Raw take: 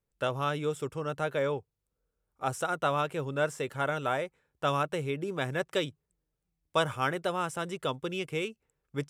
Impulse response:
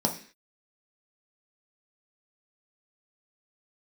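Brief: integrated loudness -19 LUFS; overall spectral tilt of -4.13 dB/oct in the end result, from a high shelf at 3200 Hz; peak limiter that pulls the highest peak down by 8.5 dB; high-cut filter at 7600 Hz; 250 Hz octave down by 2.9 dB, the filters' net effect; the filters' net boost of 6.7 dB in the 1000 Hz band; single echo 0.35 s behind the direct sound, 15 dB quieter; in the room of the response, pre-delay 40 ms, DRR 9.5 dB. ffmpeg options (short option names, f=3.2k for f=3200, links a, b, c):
-filter_complex "[0:a]lowpass=7.6k,equalizer=f=250:t=o:g=-5.5,equalizer=f=1k:t=o:g=8,highshelf=f=3.2k:g=9,alimiter=limit=-17dB:level=0:latency=1,aecho=1:1:350:0.178,asplit=2[a][b];[1:a]atrim=start_sample=2205,adelay=40[c];[b][c]afir=irnorm=-1:irlink=0,volume=-19dB[d];[a][d]amix=inputs=2:normalize=0,volume=11dB"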